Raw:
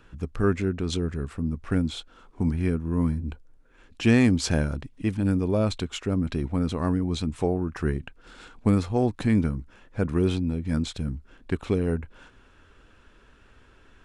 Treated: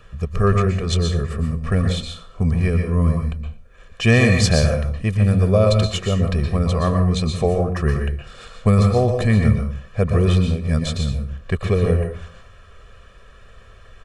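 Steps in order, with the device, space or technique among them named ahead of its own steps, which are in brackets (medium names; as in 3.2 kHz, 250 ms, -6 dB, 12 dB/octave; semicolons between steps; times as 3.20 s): microphone above a desk (comb 1.7 ms, depth 89%; reverberation RT60 0.40 s, pre-delay 112 ms, DRR 3.5 dB); trim +4.5 dB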